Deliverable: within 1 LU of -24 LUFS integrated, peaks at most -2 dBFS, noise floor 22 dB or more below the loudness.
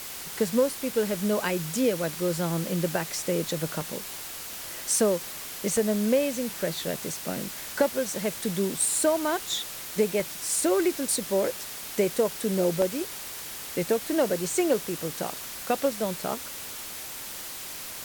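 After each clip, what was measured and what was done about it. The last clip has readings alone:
dropouts 5; longest dropout 1.3 ms; noise floor -38 dBFS; noise floor target -50 dBFS; loudness -27.5 LUFS; peak level -10.0 dBFS; loudness target -24.0 LUFS
-> interpolate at 3.81/5.77/10.20/12.82/14.50 s, 1.3 ms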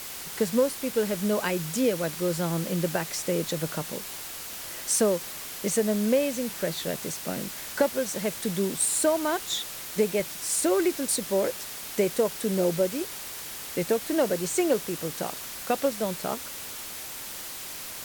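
dropouts 0; noise floor -38 dBFS; noise floor target -50 dBFS
-> noise reduction 12 dB, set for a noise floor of -38 dBFS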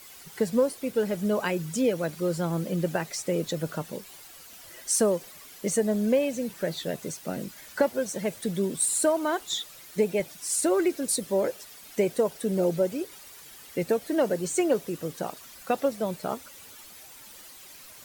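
noise floor -48 dBFS; noise floor target -50 dBFS
-> noise reduction 6 dB, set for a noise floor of -48 dBFS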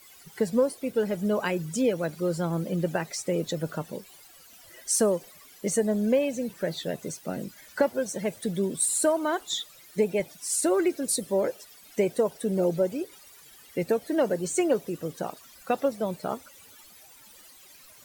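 noise floor -52 dBFS; loudness -28.0 LUFS; peak level -10.0 dBFS; loudness target -24.0 LUFS
-> trim +4 dB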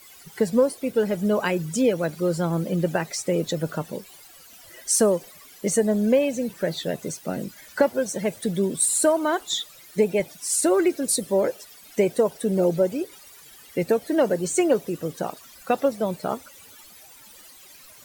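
loudness -24.0 LUFS; peak level -6.0 dBFS; noise floor -48 dBFS

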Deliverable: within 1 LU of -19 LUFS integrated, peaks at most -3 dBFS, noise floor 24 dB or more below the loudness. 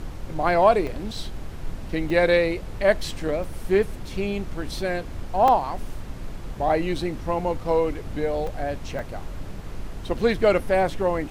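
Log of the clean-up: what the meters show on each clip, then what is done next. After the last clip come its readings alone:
dropouts 6; longest dropout 2.7 ms; noise floor -36 dBFS; noise floor target -48 dBFS; loudness -24.0 LUFS; peak level -6.0 dBFS; loudness target -19.0 LUFS
-> interpolate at 0.87/2.10/3.44/5.48/8.47/8.99 s, 2.7 ms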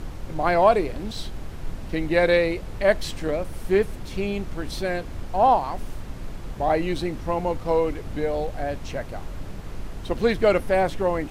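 dropouts 0; noise floor -36 dBFS; noise floor target -48 dBFS
-> noise print and reduce 12 dB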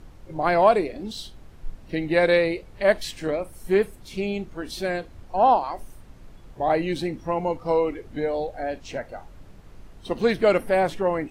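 noise floor -47 dBFS; noise floor target -48 dBFS
-> noise print and reduce 6 dB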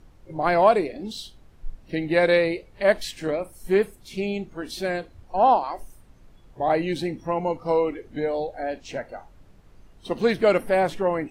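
noise floor -52 dBFS; loudness -24.0 LUFS; peak level -6.0 dBFS; loudness target -19.0 LUFS
-> trim +5 dB; peak limiter -3 dBFS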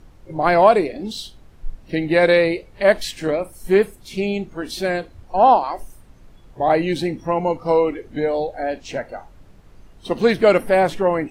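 loudness -19.5 LUFS; peak level -3.0 dBFS; noise floor -47 dBFS

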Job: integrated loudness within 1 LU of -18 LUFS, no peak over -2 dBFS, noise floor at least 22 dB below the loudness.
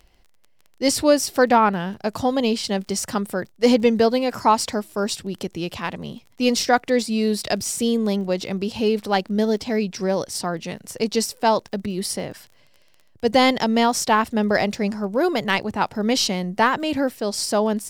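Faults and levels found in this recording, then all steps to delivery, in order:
tick rate 20 per s; loudness -21.5 LUFS; peak level -4.0 dBFS; loudness target -18.0 LUFS
-> de-click; trim +3.5 dB; peak limiter -2 dBFS

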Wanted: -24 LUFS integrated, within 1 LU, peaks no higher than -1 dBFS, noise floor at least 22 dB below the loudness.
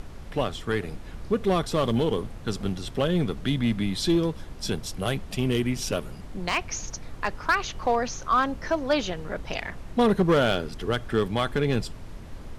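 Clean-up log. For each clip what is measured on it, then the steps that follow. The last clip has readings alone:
clipped samples 0.5%; clipping level -14.5 dBFS; noise floor -41 dBFS; noise floor target -49 dBFS; loudness -26.5 LUFS; peak level -14.5 dBFS; loudness target -24.0 LUFS
-> clip repair -14.5 dBFS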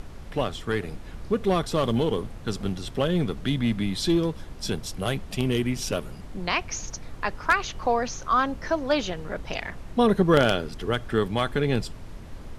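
clipped samples 0.0%; noise floor -41 dBFS; noise floor target -49 dBFS
-> noise print and reduce 8 dB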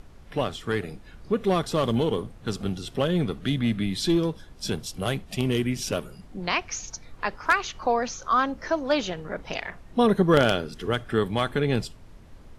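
noise floor -48 dBFS; noise floor target -49 dBFS
-> noise print and reduce 6 dB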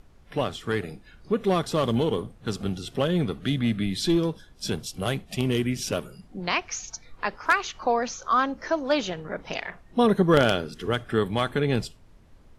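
noise floor -53 dBFS; loudness -26.5 LUFS; peak level -5.5 dBFS; loudness target -24.0 LUFS
-> trim +2.5 dB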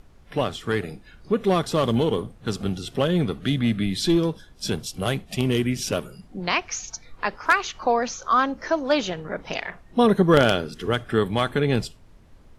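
loudness -24.0 LUFS; peak level -3.0 dBFS; noise floor -51 dBFS

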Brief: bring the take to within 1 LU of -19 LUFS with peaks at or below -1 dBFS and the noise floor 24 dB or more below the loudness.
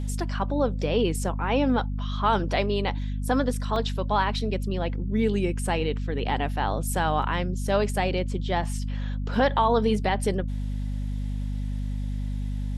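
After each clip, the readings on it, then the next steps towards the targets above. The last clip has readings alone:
dropouts 1; longest dropout 1.2 ms; hum 50 Hz; highest harmonic 250 Hz; hum level -26 dBFS; loudness -26.5 LUFS; peak level -10.0 dBFS; loudness target -19.0 LUFS
-> interpolate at 3.76 s, 1.2 ms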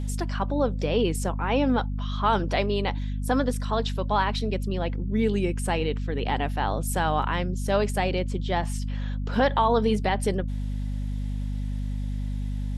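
dropouts 0; hum 50 Hz; highest harmonic 250 Hz; hum level -26 dBFS
-> de-hum 50 Hz, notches 5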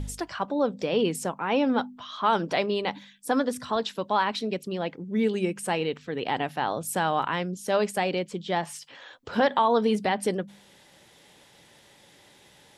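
hum not found; loudness -27.0 LUFS; peak level -11.5 dBFS; loudness target -19.0 LUFS
-> trim +8 dB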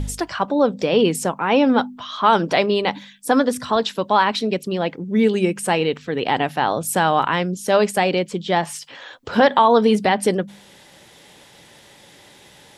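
loudness -19.0 LUFS; peak level -3.5 dBFS; noise floor -48 dBFS

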